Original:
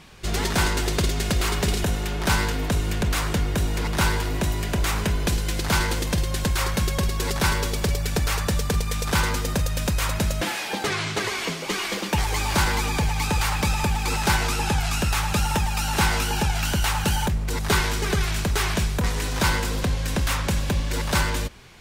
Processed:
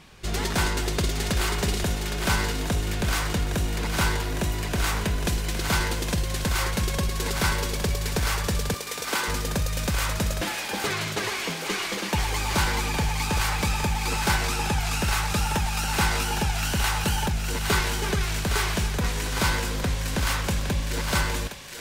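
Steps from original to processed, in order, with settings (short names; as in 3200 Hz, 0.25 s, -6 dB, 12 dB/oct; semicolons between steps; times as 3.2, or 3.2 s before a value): 8.74–9.28 Chebyshev high-pass 280 Hz, order 3; on a send: thinning echo 0.813 s, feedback 59%, high-pass 780 Hz, level -5.5 dB; on the sum: gain -2.5 dB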